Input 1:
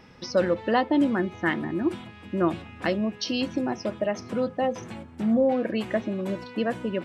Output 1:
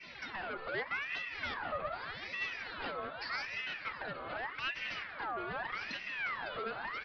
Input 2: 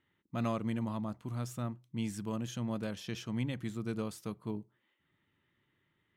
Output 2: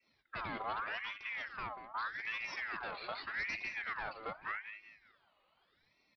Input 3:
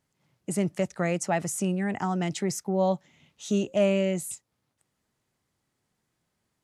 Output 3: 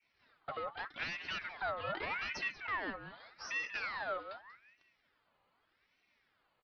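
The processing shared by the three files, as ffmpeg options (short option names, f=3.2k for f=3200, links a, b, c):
-filter_complex "[0:a]adynamicequalizer=threshold=0.0112:dfrequency=1400:dqfactor=0.83:tfrequency=1400:tqfactor=0.83:attack=5:release=100:ratio=0.375:range=2.5:mode=cutabove:tftype=bell,acompressor=threshold=-32dB:ratio=4,aecho=1:1:2.5:0.8,aresample=8000,asoftclip=type=tanh:threshold=-37.5dB,aresample=44100,flanger=delay=2.6:depth=6.2:regen=51:speed=0.73:shape=triangular,asplit=2[a][b];[b]adelay=187,lowpass=f=1.6k:p=1,volume=-9dB,asplit=2[c][d];[d]adelay=187,lowpass=f=1.6k:p=1,volume=0.35,asplit=2[e][f];[f]adelay=187,lowpass=f=1.6k:p=1,volume=0.35,asplit=2[g][h];[h]adelay=187,lowpass=f=1.6k:p=1,volume=0.35[i];[c][e][g][i]amix=inputs=4:normalize=0[j];[a][j]amix=inputs=2:normalize=0,aeval=exprs='val(0)*sin(2*PI*1600*n/s+1600*0.45/0.83*sin(2*PI*0.83*n/s))':c=same,volume=8dB"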